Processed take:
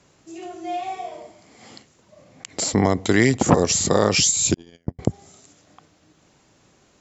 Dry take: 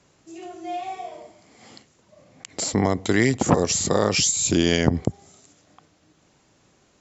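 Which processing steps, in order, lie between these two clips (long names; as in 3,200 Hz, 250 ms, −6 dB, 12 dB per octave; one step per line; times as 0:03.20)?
0:04.54–0:04.99: noise gate −13 dBFS, range −49 dB
level +2.5 dB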